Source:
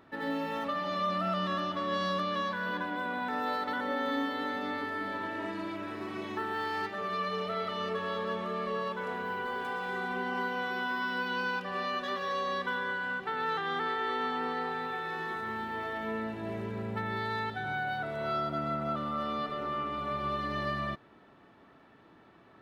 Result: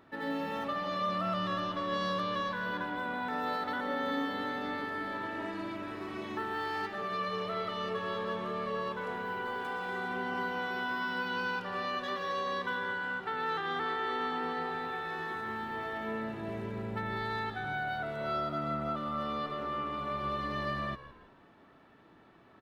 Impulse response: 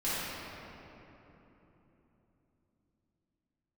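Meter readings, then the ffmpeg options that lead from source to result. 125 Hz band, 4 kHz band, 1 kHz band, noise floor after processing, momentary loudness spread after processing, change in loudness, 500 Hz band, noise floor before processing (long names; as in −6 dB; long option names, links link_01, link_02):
−1.0 dB, −1.5 dB, −1.5 dB, −59 dBFS, 4 LU, −1.5 dB, −1.5 dB, −58 dBFS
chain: -filter_complex "[0:a]asplit=4[link_01][link_02][link_03][link_04];[link_02]adelay=161,afreqshift=-76,volume=-15dB[link_05];[link_03]adelay=322,afreqshift=-152,volume=-24.4dB[link_06];[link_04]adelay=483,afreqshift=-228,volume=-33.7dB[link_07];[link_01][link_05][link_06][link_07]amix=inputs=4:normalize=0,volume=-1.5dB"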